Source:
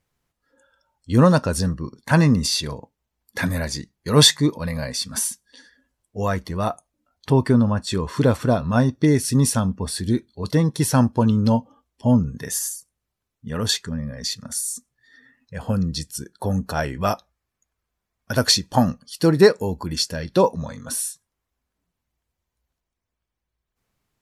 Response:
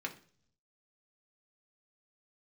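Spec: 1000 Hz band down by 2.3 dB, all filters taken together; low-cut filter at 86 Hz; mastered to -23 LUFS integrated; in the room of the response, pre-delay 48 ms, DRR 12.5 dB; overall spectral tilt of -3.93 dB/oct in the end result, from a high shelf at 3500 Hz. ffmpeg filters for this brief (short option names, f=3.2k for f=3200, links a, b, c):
-filter_complex "[0:a]highpass=86,equalizer=f=1k:t=o:g=-3.5,highshelf=f=3.5k:g=6,asplit=2[a][b];[1:a]atrim=start_sample=2205,adelay=48[c];[b][c]afir=irnorm=-1:irlink=0,volume=-14.5dB[d];[a][d]amix=inputs=2:normalize=0,volume=-3dB"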